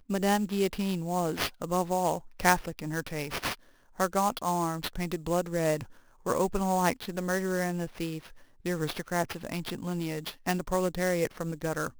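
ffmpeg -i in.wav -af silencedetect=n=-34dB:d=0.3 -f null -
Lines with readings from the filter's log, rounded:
silence_start: 3.54
silence_end: 4.00 | silence_duration: 0.46
silence_start: 5.83
silence_end: 6.26 | silence_duration: 0.44
silence_start: 8.18
silence_end: 8.66 | silence_duration: 0.47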